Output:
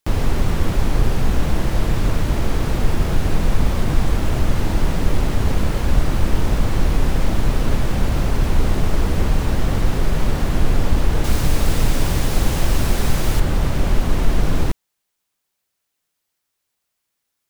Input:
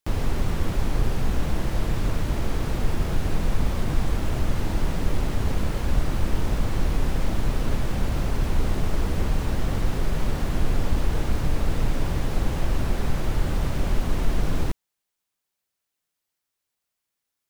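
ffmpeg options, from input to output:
-filter_complex "[0:a]asettb=1/sr,asplit=3[s0][s1][s2];[s0]atrim=end=11.244[s3];[s1]atrim=start=11.24:end=13.4,asetpts=PTS-STARTPTS,afade=t=in:d=0.004:c=qsin,afade=t=out:st=2.156:d=0.004:c=qsin,highshelf=f=3500:g=9.5[s4];[s2]atrim=start=13.396[s5];[s3][s4]acrossfade=d=0.004:c1=hsin:c2=qsin[s6];[s6][s5]acrossfade=d=0.004:c1=qsin:c2=hsin,volume=2"

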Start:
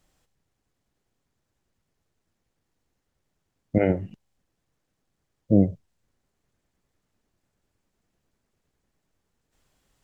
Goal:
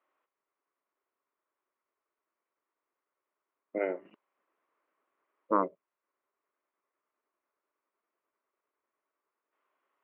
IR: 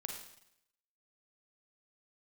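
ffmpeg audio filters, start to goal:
-filter_complex "[0:a]asettb=1/sr,asplit=3[s0][s1][s2];[s0]atrim=end=4.054[s3];[s1]atrim=start=4.05:end=5.68,asetpts=PTS-STARTPTS,afade=t=in:d=0.004:c=qsin,afade=t=out:st=1.626:d=0.004:c=qsin,aeval=exprs='0.422*sin(PI/2*1.58*val(0)/0.422)':c=same[s4];[s2]atrim=start=5.676[s5];[s3][s4]acrossfade=d=0.004:c1=hsin:c2=qsin[s6];[s6][s5]acrossfade=d=0.004:c1=qsin:c2=hsin,highpass=f=420:w=0.5412,highpass=f=420:w=1.3066,equalizer=f=490:t=q:w=4:g=-7,equalizer=f=770:t=q:w=4:g=-9,equalizer=f=1100:t=q:w=4:g=6,equalizer=f=1700:t=q:w=4:g=-6,lowpass=f=2100:w=0.5412,lowpass=f=2100:w=1.3066,volume=0.841"

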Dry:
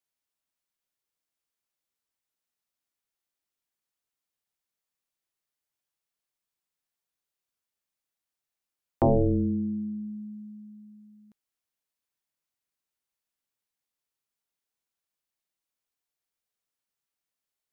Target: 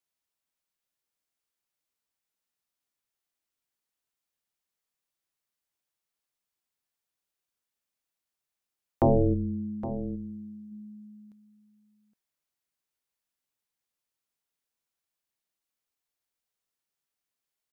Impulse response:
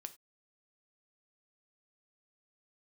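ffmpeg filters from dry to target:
-filter_complex "[0:a]asplit=3[s0][s1][s2];[s0]afade=t=out:st=9.33:d=0.02[s3];[s1]equalizer=f=830:w=0.36:g=-12.5,afade=t=in:st=9.33:d=0.02,afade=t=out:st=9.89:d=0.02[s4];[s2]afade=t=in:st=9.89:d=0.02[s5];[s3][s4][s5]amix=inputs=3:normalize=0,asplit=2[s6][s7];[s7]aecho=0:1:816:0.211[s8];[s6][s8]amix=inputs=2:normalize=0"

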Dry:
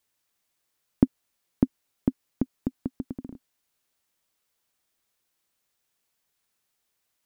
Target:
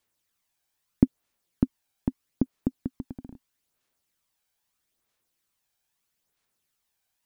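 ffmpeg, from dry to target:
-af "aphaser=in_gain=1:out_gain=1:delay=1.3:decay=0.42:speed=0.78:type=sinusoidal,volume=0.75"

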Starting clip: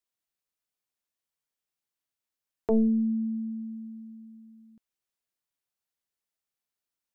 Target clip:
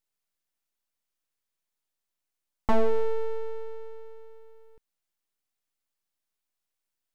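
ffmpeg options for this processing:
-af "aeval=exprs='abs(val(0))':c=same,volume=1.68"

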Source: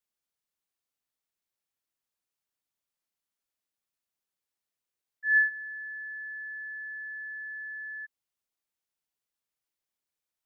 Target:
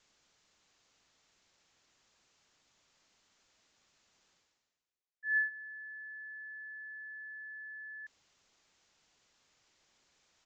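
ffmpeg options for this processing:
-af "areverse,acompressor=mode=upward:threshold=0.0141:ratio=2.5,areverse,aresample=16000,aresample=44100,volume=0.398"

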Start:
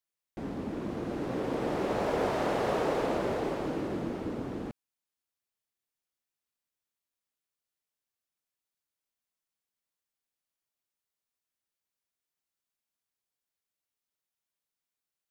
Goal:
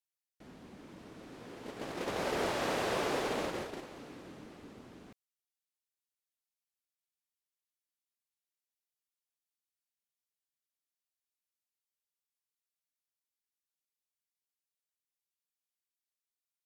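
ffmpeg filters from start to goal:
-af "asetrate=40517,aresample=44100,tiltshelf=f=1400:g=-6.5,agate=range=0.282:threshold=0.02:ratio=16:detection=peak"

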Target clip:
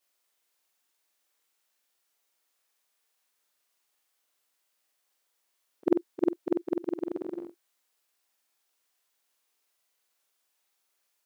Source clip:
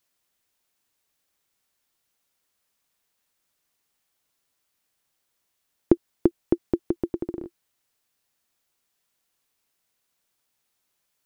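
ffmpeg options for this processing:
-af "afftfilt=real='re':imag='-im':win_size=4096:overlap=0.75,highpass=370,volume=1.58"

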